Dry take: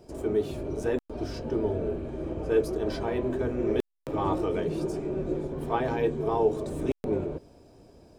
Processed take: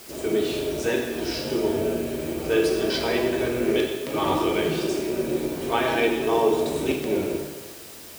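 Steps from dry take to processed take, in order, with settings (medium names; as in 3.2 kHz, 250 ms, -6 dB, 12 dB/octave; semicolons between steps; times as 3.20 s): frequency weighting D; in parallel at -10 dB: word length cut 6-bit, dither triangular; on the sum: plate-style reverb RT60 1.3 s, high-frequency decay 0.9×, DRR 0 dB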